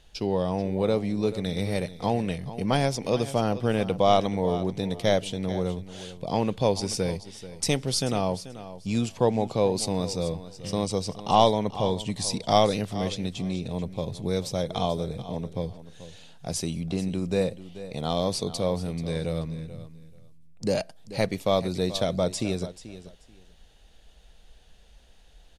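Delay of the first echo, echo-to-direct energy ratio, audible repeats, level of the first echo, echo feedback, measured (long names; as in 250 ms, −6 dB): 435 ms, −14.5 dB, 2, −14.5 dB, 18%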